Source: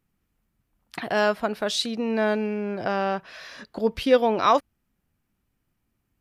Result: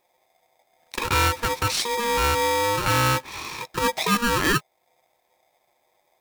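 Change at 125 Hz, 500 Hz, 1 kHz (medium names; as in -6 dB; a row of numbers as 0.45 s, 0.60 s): +12.0 dB, -4.0 dB, +3.0 dB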